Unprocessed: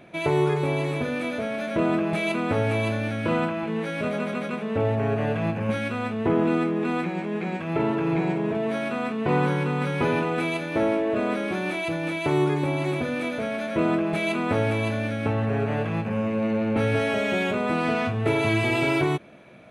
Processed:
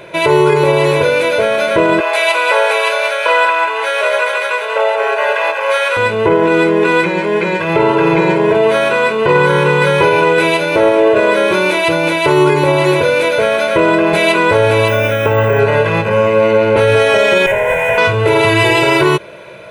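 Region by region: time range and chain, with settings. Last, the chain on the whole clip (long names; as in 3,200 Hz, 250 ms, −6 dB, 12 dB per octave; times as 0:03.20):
0:02.00–0:05.97: high-pass filter 590 Hz 24 dB per octave + single-tap delay 189 ms −7.5 dB
0:14.88–0:15.59: Butterworth band-reject 4,300 Hz, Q 3.6 + bad sample-rate conversion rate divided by 2×, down none, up hold
0:17.46–0:17.98: lower of the sound and its delayed copy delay 7.7 ms + parametric band 4,900 Hz −10.5 dB 1.1 octaves + phaser with its sweep stopped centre 1,200 Hz, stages 6
whole clip: low-shelf EQ 230 Hz −10.5 dB; comb filter 2 ms, depth 86%; boost into a limiter +17 dB; level −1 dB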